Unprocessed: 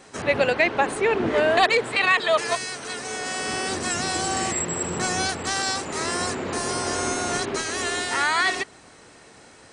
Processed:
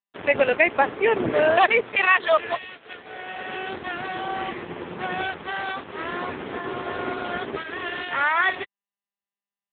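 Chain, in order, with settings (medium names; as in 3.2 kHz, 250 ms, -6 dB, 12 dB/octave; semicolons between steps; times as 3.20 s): 2.83–5.08 s: bass shelf 190 Hz -5 dB; crossover distortion -33.5 dBFS; trim +3.5 dB; AMR-NB 6.7 kbps 8 kHz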